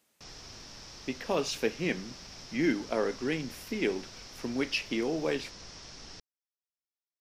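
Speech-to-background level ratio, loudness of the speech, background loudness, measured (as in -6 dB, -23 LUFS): 13.5 dB, -32.5 LUFS, -46.0 LUFS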